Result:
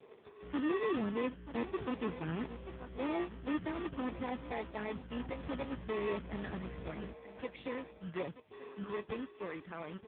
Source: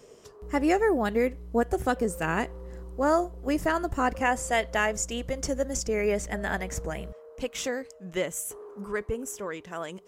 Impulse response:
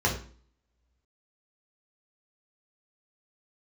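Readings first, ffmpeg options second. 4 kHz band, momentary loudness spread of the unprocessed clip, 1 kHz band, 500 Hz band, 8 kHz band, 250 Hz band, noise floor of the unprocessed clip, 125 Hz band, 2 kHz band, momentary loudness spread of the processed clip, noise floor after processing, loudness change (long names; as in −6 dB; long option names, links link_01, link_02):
−12.5 dB, 11 LU, −14.0 dB, −11.5 dB, below −40 dB, −7.5 dB, −51 dBFS, −7.5 dB, −14.5 dB, 11 LU, −58 dBFS, −11.0 dB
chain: -filter_complex "[0:a]equalizer=frequency=3000:width_type=o:width=0.23:gain=-5,asplit=2[link_01][link_02];[link_02]adelay=932.9,volume=-18dB,highshelf=frequency=4000:gain=-21[link_03];[link_01][link_03]amix=inputs=2:normalize=0,acrossover=split=550[link_04][link_05];[link_04]acrusher=samples=29:mix=1:aa=0.000001[link_06];[link_05]acompressor=threshold=-40dB:ratio=4[link_07];[link_06][link_07]amix=inputs=2:normalize=0,asoftclip=type=tanh:threshold=-27dB,asubboost=boost=2.5:cutoff=110,volume=-1.5dB" -ar 8000 -c:a libopencore_amrnb -b:a 5150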